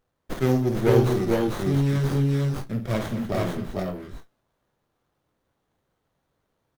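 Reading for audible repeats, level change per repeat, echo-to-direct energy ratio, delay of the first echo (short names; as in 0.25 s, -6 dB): 4, no steady repeat, 0.0 dB, 51 ms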